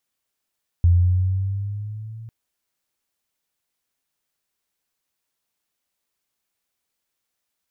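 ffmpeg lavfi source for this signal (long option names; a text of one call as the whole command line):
ffmpeg -f lavfi -i "aevalsrc='pow(10,(-10.5-24*t/1.45)/20)*sin(2*PI*85.7*1.45/(5*log(2)/12)*(exp(5*log(2)/12*t/1.45)-1))':duration=1.45:sample_rate=44100" out.wav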